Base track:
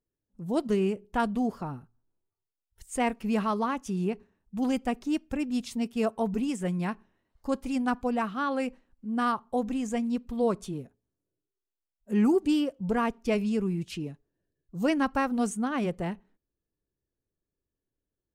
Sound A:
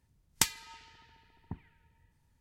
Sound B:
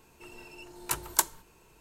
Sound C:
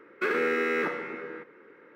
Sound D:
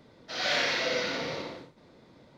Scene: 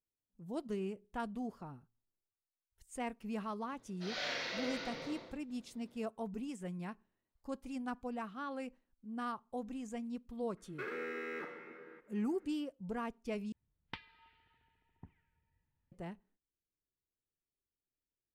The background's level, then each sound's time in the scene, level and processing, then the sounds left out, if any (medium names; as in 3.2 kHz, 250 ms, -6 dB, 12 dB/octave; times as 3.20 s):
base track -13 dB
3.72 s: add D -11.5 dB
10.57 s: add C -15 dB
13.52 s: replace with A -13 dB + inverse Chebyshev low-pass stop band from 6.4 kHz
not used: B